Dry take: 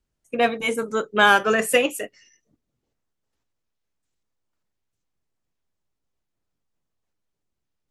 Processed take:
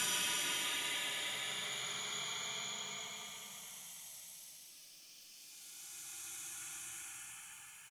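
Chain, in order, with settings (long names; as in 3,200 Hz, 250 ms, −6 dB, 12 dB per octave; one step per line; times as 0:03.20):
gate on every frequency bin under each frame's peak −25 dB weak
high-shelf EQ 2,200 Hz +12 dB
bouncing-ball delay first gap 770 ms, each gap 0.85×, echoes 5
extreme stretch with random phases 27×, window 0.10 s, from 0:04.62
level +10 dB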